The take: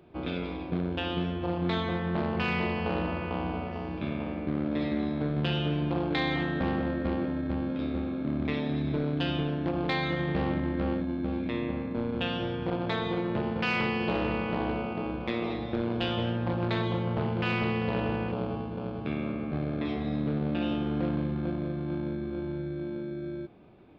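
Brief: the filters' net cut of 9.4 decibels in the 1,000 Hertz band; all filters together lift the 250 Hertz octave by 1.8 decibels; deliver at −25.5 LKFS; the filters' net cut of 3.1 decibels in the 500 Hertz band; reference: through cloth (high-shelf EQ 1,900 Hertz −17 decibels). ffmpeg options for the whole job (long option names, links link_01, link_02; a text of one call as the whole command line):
ffmpeg -i in.wav -af "equalizer=frequency=250:width_type=o:gain=4,equalizer=frequency=500:width_type=o:gain=-3,equalizer=frequency=1000:width_type=o:gain=-7.5,highshelf=frequency=1900:gain=-17,volume=5.5dB" out.wav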